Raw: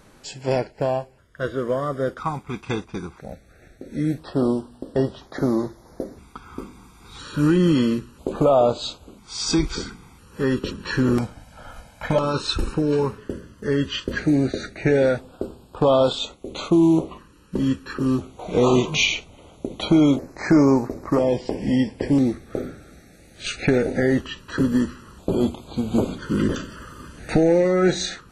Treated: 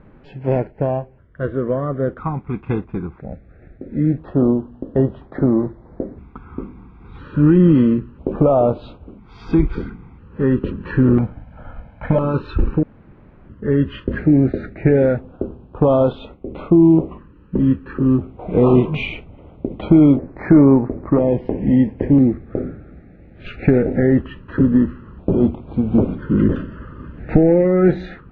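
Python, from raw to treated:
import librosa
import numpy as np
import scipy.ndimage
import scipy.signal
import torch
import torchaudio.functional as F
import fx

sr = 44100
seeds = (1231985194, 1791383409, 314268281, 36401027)

y = fx.high_shelf(x, sr, hz=4000.0, db=-10.0, at=(16.39, 16.85))
y = fx.high_shelf(y, sr, hz=5500.0, db=-7.0, at=(22.25, 23.46))
y = fx.edit(y, sr, fx.room_tone_fill(start_s=12.83, length_s=0.66), tone=tone)
y = scipy.signal.sosfilt(scipy.signal.butter(4, 2500.0, 'lowpass', fs=sr, output='sos'), y)
y = fx.low_shelf(y, sr, hz=490.0, db=11.5)
y = F.gain(torch.from_numpy(y), -3.0).numpy()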